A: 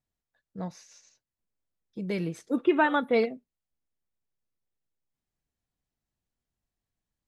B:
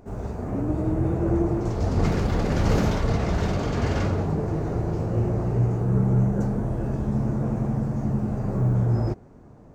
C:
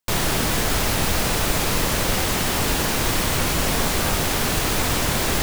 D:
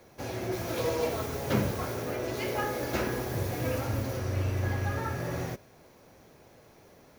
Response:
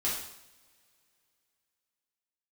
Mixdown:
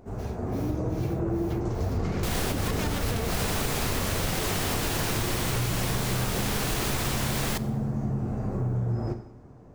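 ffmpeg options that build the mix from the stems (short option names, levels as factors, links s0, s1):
-filter_complex "[0:a]aeval=exprs='(mod(6.68*val(0)+1,2)-1)/6.68':c=same,volume=0.447,asplit=2[s0][s1];[1:a]volume=0.631,asplit=2[s2][s3];[s3]volume=0.266[s4];[2:a]adelay=2150,volume=0.794,asplit=2[s5][s6];[s6]volume=0.0841[s7];[3:a]acrossover=split=1200[s8][s9];[s8]aeval=exprs='val(0)*(1-1/2+1/2*cos(2*PI*2.4*n/s))':c=same[s10];[s9]aeval=exprs='val(0)*(1-1/2-1/2*cos(2*PI*2.4*n/s))':c=same[s11];[s10][s11]amix=inputs=2:normalize=0,volume=0.531[s12];[s1]apad=whole_len=334082[s13];[s5][s13]sidechaincompress=threshold=0.0126:ratio=8:attack=16:release=186[s14];[4:a]atrim=start_sample=2205[s15];[s4][s7]amix=inputs=2:normalize=0[s16];[s16][s15]afir=irnorm=-1:irlink=0[s17];[s0][s2][s14][s12][s17]amix=inputs=5:normalize=0,acompressor=threshold=0.0631:ratio=6"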